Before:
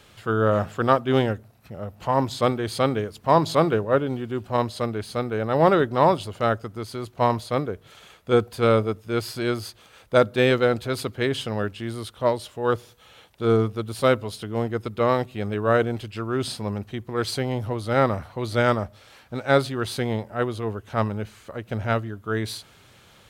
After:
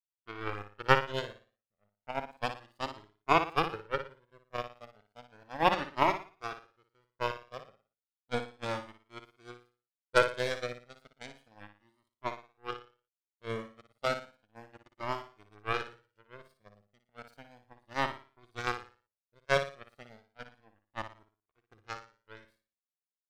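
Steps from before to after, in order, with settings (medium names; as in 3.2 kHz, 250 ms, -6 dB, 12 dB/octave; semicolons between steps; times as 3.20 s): power-law waveshaper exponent 3; flutter echo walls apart 9.9 m, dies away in 0.38 s; Shepard-style flanger rising 0.33 Hz; trim +6.5 dB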